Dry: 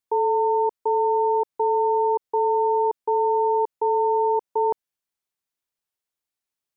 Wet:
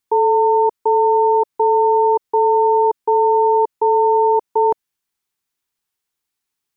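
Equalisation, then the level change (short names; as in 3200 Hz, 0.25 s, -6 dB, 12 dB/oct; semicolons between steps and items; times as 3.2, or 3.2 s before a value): bell 600 Hz -14.5 dB 0.22 oct; +7.5 dB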